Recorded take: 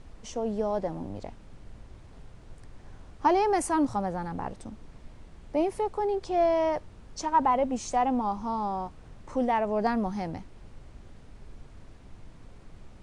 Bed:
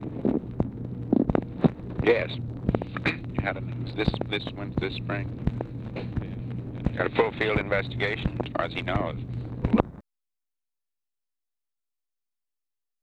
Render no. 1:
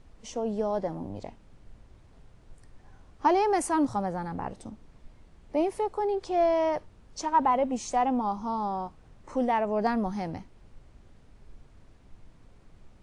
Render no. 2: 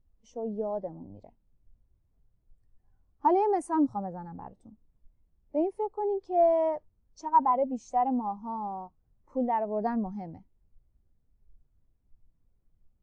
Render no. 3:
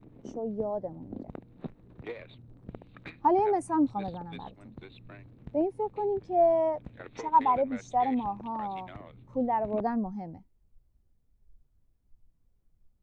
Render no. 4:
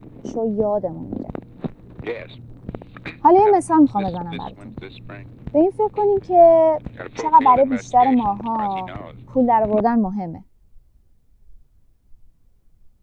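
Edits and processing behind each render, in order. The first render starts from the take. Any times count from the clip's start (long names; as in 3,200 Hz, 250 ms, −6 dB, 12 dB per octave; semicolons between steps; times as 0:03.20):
noise reduction from a noise print 6 dB
every bin expanded away from the loudest bin 1.5 to 1
mix in bed −19 dB
level +12 dB; brickwall limiter −3 dBFS, peak gain reduction 3 dB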